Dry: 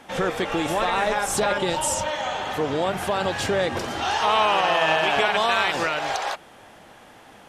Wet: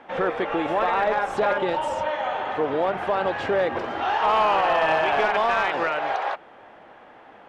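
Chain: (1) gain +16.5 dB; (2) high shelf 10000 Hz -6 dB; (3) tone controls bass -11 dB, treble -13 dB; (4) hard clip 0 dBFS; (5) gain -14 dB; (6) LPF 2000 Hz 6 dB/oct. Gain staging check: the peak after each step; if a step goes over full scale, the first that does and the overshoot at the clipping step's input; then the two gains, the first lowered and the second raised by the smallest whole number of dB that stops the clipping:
+9.0, +9.0, +8.5, 0.0, -14.0, -14.0 dBFS; step 1, 8.5 dB; step 1 +7.5 dB, step 5 -5 dB

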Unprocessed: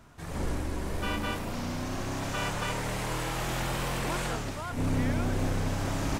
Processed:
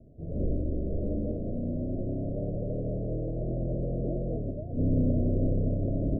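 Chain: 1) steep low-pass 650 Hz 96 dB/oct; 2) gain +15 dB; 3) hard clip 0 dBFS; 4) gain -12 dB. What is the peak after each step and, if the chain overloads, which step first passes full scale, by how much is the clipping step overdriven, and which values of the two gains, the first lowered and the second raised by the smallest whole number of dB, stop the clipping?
-19.5, -4.5, -4.5, -16.5 dBFS; no overload

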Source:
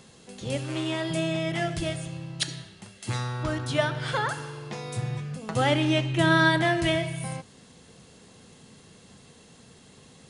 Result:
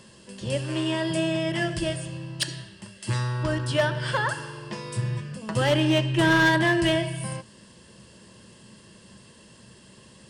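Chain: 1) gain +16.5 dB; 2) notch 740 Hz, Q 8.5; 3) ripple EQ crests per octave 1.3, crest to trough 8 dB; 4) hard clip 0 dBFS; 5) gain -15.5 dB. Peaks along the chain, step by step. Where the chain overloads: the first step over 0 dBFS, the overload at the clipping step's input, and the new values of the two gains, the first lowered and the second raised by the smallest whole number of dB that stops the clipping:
+7.5, +7.5, +9.0, 0.0, -15.5 dBFS; step 1, 9.0 dB; step 1 +7.5 dB, step 5 -6.5 dB

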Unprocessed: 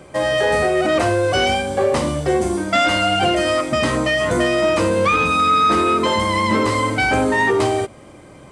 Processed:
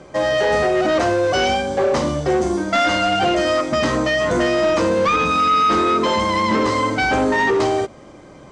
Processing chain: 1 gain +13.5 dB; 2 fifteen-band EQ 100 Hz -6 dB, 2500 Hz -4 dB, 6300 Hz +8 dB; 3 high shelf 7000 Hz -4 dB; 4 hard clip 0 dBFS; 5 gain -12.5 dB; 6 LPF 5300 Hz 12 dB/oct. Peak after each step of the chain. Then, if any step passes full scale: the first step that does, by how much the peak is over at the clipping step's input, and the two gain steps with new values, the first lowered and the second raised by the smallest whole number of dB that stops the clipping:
+7.5, +6.5, +6.5, 0.0, -12.5, -12.0 dBFS; step 1, 6.5 dB; step 1 +6.5 dB, step 5 -5.5 dB

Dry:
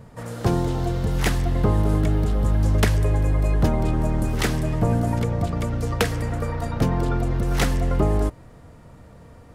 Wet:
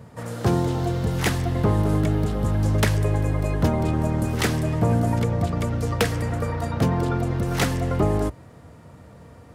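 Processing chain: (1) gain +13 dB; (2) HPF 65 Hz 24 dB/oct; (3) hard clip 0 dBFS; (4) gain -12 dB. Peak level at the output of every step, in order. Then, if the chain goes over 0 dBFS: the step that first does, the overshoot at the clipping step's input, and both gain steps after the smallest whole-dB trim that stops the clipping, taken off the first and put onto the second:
+5.5, +7.5, 0.0, -12.0 dBFS; step 1, 7.5 dB; step 1 +5 dB, step 4 -4 dB

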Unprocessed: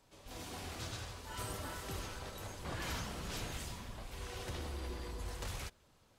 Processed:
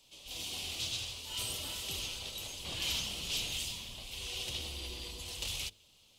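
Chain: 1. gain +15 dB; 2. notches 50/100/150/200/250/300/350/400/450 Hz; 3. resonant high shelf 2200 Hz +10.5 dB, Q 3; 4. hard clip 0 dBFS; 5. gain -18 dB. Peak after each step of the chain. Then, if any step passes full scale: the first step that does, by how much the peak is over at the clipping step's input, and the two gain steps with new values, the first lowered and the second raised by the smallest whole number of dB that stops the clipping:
-14.0, -14.0, -5.0, -5.0, -23.0 dBFS; no overload

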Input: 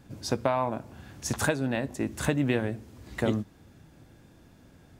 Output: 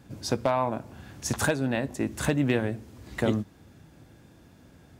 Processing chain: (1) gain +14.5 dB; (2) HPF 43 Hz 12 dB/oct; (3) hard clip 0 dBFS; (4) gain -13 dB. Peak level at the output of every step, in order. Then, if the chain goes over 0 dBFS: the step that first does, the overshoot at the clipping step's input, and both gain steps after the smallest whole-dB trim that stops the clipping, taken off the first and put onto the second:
+5.5, +6.0, 0.0, -13.0 dBFS; step 1, 6.0 dB; step 1 +8.5 dB, step 4 -7 dB

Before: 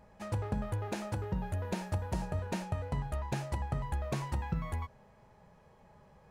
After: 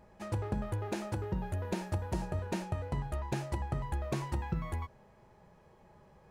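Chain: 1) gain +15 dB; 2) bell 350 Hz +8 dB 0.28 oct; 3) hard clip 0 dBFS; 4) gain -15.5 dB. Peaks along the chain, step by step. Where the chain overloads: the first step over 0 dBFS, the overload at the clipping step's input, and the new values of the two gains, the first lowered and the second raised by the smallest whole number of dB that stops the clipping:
-8.5, -5.5, -5.5, -21.0 dBFS; no overload

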